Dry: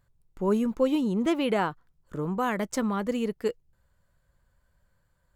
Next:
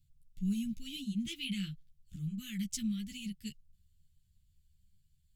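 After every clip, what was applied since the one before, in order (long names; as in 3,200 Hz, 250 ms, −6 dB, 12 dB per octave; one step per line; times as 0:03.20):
elliptic band-stop filter 170–2,900 Hz, stop band 80 dB
string-ensemble chorus
level +2.5 dB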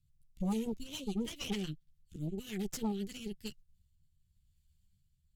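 harmonic generator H 8 −13 dB, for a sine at −22.5 dBFS
rotating-speaker cabinet horn 7 Hz, later 0.85 Hz, at 0:02.55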